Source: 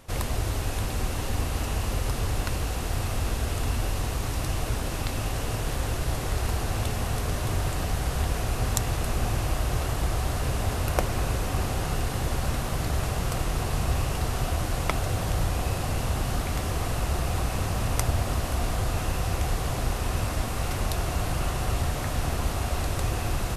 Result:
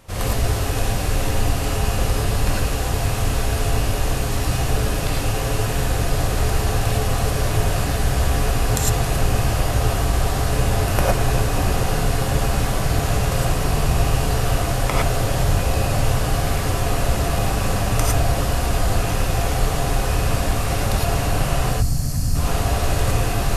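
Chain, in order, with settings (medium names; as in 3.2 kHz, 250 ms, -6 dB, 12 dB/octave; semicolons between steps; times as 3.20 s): time-frequency box 21.70–22.35 s, 280–4100 Hz -15 dB; gated-style reverb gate 130 ms rising, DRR -5.5 dB; trim +1 dB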